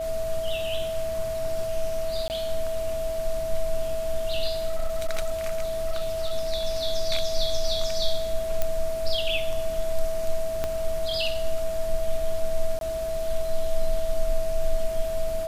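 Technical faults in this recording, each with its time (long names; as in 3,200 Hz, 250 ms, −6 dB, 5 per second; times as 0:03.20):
whistle 650 Hz −27 dBFS
0:02.28–0:02.30: drop-out 19 ms
0:04.66–0:06.32: clipping −20.5 dBFS
0:08.62: click −10 dBFS
0:10.64: click −13 dBFS
0:12.79–0:12.81: drop-out 22 ms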